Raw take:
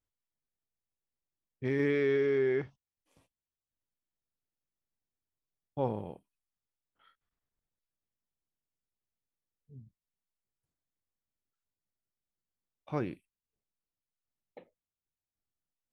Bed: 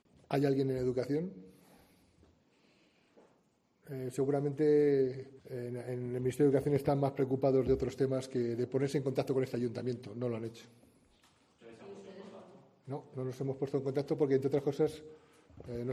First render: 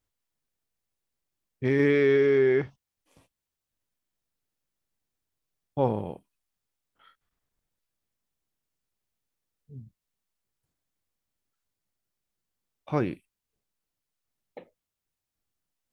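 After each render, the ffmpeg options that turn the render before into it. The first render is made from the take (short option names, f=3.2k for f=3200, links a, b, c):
-af "volume=7dB"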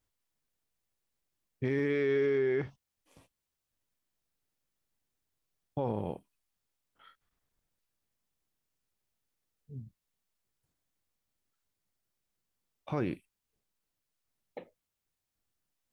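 -af "alimiter=limit=-21.5dB:level=0:latency=1:release=97"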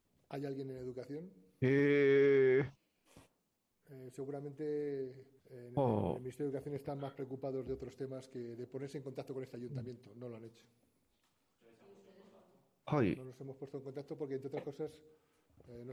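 -filter_complex "[1:a]volume=-12dB[a];[0:a][a]amix=inputs=2:normalize=0"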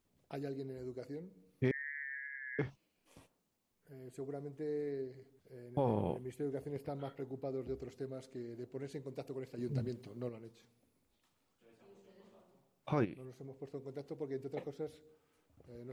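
-filter_complex "[0:a]asettb=1/sr,asplit=3[a][b][c];[a]atrim=end=1.714[d];[b]atrim=start=1.71:end=2.59,asetpts=PTS-STARTPTS,afade=t=in:d=0.004:c=qsin,afade=t=out:st=0.876:d=0.004:c=qsin,asuperpass=centerf=1800:order=8:qfactor=3.6[e];[c]atrim=start=2.586[f];[d][e]acrossfade=d=0.004:c1=hsin:c2=qsin[g];[g][f]acrossfade=d=0.004:c1=qsin:c2=hsin,asettb=1/sr,asplit=3[h][i][j];[h]atrim=end=9.584[k];[i]atrim=start=9.58:end=10.29,asetpts=PTS-STARTPTS,afade=t=in:d=0.004:c=qsin,afade=t=out:st=0.706:d=0.004:c=qsin,acontrast=64[l];[j]atrim=start=10.286[m];[k][l]acrossfade=d=0.004:c1=hsin:c2=qsin[n];[n][m]acrossfade=d=0.004:c1=qsin:c2=hsin,asplit=3[o][p][q];[o]afade=t=out:st=13.04:d=0.02[r];[p]acompressor=threshold=-43dB:ratio=4:attack=3.2:release=140:knee=1:detection=peak,afade=t=in:st=13.04:d=0.02,afade=t=out:st=13.57:d=0.02[s];[q]afade=t=in:st=13.57:d=0.02[t];[r][s][t]amix=inputs=3:normalize=0"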